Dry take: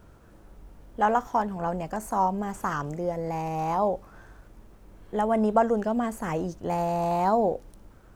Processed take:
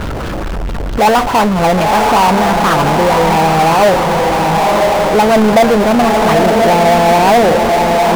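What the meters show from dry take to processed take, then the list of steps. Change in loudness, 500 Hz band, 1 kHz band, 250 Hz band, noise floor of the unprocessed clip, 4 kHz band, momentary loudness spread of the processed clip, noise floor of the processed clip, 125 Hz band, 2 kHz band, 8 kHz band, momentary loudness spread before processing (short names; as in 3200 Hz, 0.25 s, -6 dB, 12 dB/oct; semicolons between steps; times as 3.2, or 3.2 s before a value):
+17.0 dB, +17.5 dB, +17.0 dB, +16.0 dB, -53 dBFS, +31.0 dB, 4 LU, -19 dBFS, +17.5 dB, +22.5 dB, +23.0 dB, 8 LU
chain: LFO low-pass sine 4.6 Hz 590–4000 Hz; diffused feedback echo 0.989 s, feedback 53%, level -5.5 dB; power-law curve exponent 0.35; gain +2 dB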